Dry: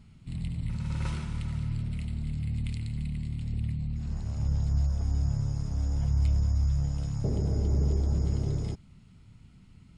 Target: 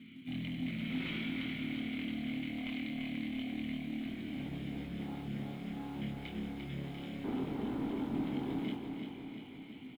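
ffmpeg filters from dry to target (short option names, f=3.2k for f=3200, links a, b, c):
-filter_complex "[0:a]highpass=f=47:w=0.5412,highpass=f=47:w=1.3066,acontrast=79,asplit=3[a][b][c];[a]bandpass=f=270:t=q:w=8,volume=0dB[d];[b]bandpass=f=2.29k:t=q:w=8,volume=-6dB[e];[c]bandpass=f=3.01k:t=q:w=8,volume=-9dB[f];[d][e][f]amix=inputs=3:normalize=0,asplit=2[g][h];[h]highpass=f=720:p=1,volume=23dB,asoftclip=type=tanh:threshold=-27.5dB[i];[g][i]amix=inputs=2:normalize=0,lowpass=f=1.2k:p=1,volume=-6dB,acrusher=bits=5:mode=log:mix=0:aa=0.000001,asoftclip=type=tanh:threshold=-35dB,highshelf=f=4.3k:t=q:w=3:g=-6.5,asplit=2[j][k];[k]adelay=23,volume=-5dB[l];[j][l]amix=inputs=2:normalize=0,asplit=2[m][n];[n]aecho=0:1:346|692|1038|1384|1730|2076|2422|2768:0.501|0.296|0.174|0.103|0.0607|0.0358|0.0211|0.0125[o];[m][o]amix=inputs=2:normalize=0,volume=1dB"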